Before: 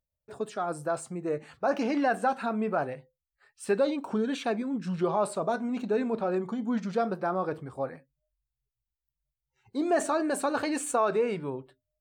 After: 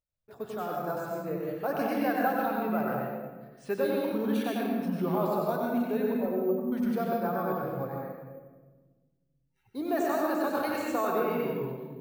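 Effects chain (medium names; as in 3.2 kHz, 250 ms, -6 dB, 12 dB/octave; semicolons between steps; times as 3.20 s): 6.14–6.72 s: spectral contrast enhancement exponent 2.5; reverberation RT60 1.4 s, pre-delay 94 ms, DRR -3 dB; careless resampling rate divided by 3×, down filtered, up hold; trim -5.5 dB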